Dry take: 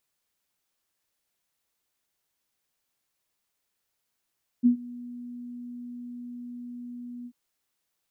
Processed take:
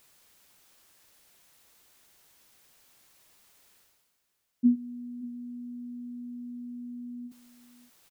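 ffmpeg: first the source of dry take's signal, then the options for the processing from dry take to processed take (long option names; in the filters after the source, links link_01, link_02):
-f lavfi -i "aevalsrc='0.2*sin(2*PI*243*t)':duration=2.69:sample_rate=44100,afade=type=in:duration=0.03,afade=type=out:start_time=0.03:duration=0.101:silence=0.075,afade=type=out:start_time=2.63:duration=0.06"
-af "areverse,acompressor=mode=upward:threshold=-46dB:ratio=2.5,areverse,aecho=1:1:579:0.126"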